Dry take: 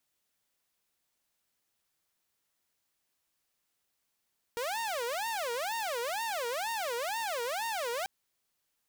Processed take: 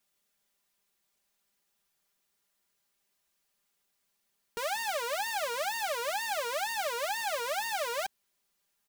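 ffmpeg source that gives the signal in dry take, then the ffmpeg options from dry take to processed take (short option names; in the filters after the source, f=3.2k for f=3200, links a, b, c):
-f lavfi -i "aevalsrc='0.0335*(2*mod((695.5*t-228.5/(2*PI*2.1)*sin(2*PI*2.1*t)),1)-1)':d=3.49:s=44100"
-af "aecho=1:1:5:0.74"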